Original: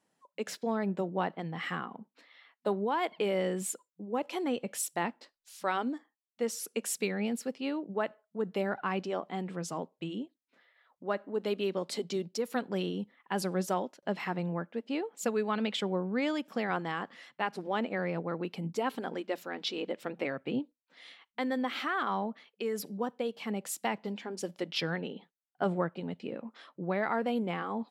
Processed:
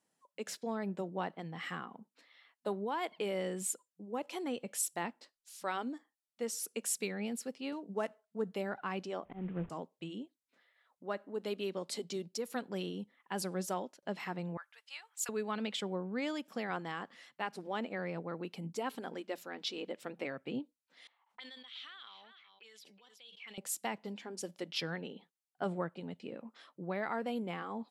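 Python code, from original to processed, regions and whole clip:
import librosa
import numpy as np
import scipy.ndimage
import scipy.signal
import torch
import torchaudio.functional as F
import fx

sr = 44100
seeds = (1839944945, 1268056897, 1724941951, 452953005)

y = fx.chain(x, sr, fx.median_filter(points=9),
    fx.comb(ms=4.4, depth=0.49), at=(7.72, 8.52))
y = fx.chain(y, sr, fx.cvsd(bps=16000),
    fx.tilt_eq(slope=-3.0),
    fx.auto_swell(attack_ms=136.0), at=(9.25, 9.7))
y = fx.chain(y, sr, fx.highpass(hz=1100.0, slope=24),
    fx.high_shelf(hz=5100.0, db=6.5), at=(14.57, 15.29))
y = fx.chain(y, sr, fx.auto_wah(base_hz=790.0, top_hz=3500.0, q=4.6, full_db=-32.5, direction='up'),
    fx.echo_single(ms=373, db=-16.0),
    fx.sustainer(db_per_s=25.0), at=(21.07, 23.58))
y = scipy.signal.sosfilt(scipy.signal.butter(2, 11000.0, 'lowpass', fs=sr, output='sos'), y)
y = fx.high_shelf(y, sr, hz=6800.0, db=11.5)
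y = y * 10.0 ** (-6.0 / 20.0)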